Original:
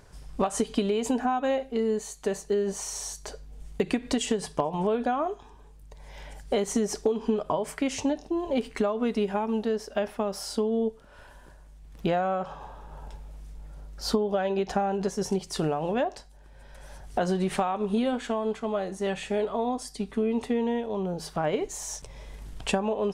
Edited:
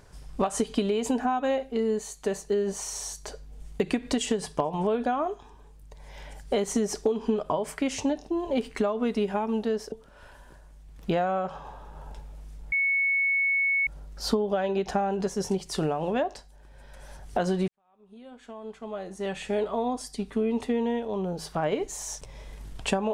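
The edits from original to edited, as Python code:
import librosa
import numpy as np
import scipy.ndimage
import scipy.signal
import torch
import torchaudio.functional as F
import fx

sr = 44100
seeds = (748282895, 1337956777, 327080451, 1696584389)

y = fx.edit(x, sr, fx.cut(start_s=9.92, length_s=0.96),
    fx.insert_tone(at_s=13.68, length_s=1.15, hz=2210.0, db=-21.5),
    fx.fade_in_span(start_s=17.49, length_s=1.86, curve='qua'), tone=tone)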